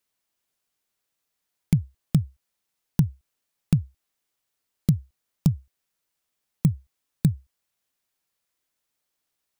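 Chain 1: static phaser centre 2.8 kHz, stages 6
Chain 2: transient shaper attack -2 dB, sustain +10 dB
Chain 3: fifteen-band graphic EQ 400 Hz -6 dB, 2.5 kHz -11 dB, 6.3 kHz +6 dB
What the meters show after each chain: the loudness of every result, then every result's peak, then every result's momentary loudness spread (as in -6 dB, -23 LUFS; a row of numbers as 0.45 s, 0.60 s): -27.5 LUFS, -27.0 LUFS, -27.0 LUFS; -7.0 dBFS, -8.5 dBFS, -7.0 dBFS; 11 LU, 6 LU, 11 LU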